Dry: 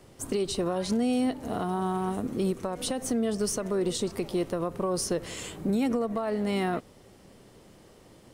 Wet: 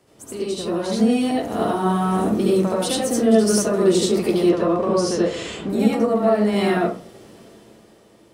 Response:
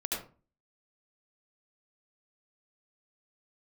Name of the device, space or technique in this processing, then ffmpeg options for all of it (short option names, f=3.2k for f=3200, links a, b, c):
far laptop microphone: -filter_complex "[1:a]atrim=start_sample=2205[a];[0:a][a]afir=irnorm=-1:irlink=0,highpass=f=130:p=1,dynaudnorm=f=110:g=17:m=11.5dB,asettb=1/sr,asplit=3[b][c][d];[b]atrim=end=4.494[e];[c]atrim=start=4.49:end=5.7,asetpts=PTS-STARTPTS,afade=t=in:d=0.004:c=qsin,afade=t=out:st=1.206:d=0.004:c=qsin,lowpass=5.7k[f];[d]atrim=start=5.696[g];[e][f]acrossfade=d=0.004:c1=hsin:c2=qsin[h];[h][g]acrossfade=d=0.004:c1=qsin:c2=hsin,volume=-2.5dB"